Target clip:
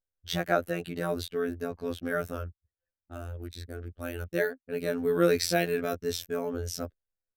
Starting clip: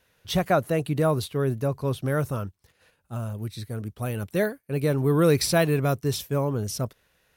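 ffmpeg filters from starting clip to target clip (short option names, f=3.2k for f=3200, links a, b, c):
-af "afftfilt=real='hypot(re,im)*cos(PI*b)':imag='0':win_size=2048:overlap=0.75,anlmdn=0.0158,equalizer=f=160:t=o:w=0.33:g=-11,equalizer=f=1k:t=o:w=0.33:g=-11,equalizer=f=1.6k:t=o:w=0.33:g=6,equalizer=f=10k:t=o:w=0.33:g=-7"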